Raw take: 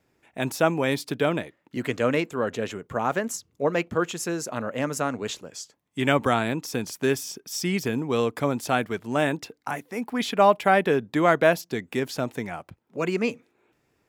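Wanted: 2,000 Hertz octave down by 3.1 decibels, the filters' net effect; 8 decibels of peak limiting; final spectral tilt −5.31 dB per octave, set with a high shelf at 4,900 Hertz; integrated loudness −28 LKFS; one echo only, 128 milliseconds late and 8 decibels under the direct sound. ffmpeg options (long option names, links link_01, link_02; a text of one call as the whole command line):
ffmpeg -i in.wav -af "equalizer=frequency=2000:width_type=o:gain=-3.5,highshelf=frequency=4900:gain=-4,alimiter=limit=-14dB:level=0:latency=1,aecho=1:1:128:0.398" out.wav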